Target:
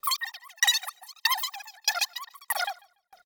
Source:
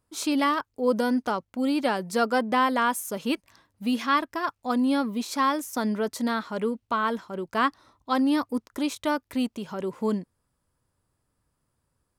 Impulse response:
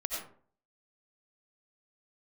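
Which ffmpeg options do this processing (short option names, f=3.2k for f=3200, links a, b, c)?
-af "asetrate=165375,aresample=44100,dynaudnorm=f=290:g=5:m=11.5dB,highshelf=f=3.4k:g=7.5,acompressor=threshold=-18dB:ratio=6,equalizer=f=96:w=0.72:g=-8.5,aecho=1:1:1.6:0.88,aecho=1:1:144|288|432|576:0.15|0.0748|0.0374|0.0187,aeval=exprs='val(0)*pow(10,-36*if(lt(mod(1.6*n/s,1),2*abs(1.6)/1000),1-mod(1.6*n/s,1)/(2*abs(1.6)/1000),(mod(1.6*n/s,1)-2*abs(1.6)/1000)/(1-2*abs(1.6)/1000))/20)':c=same"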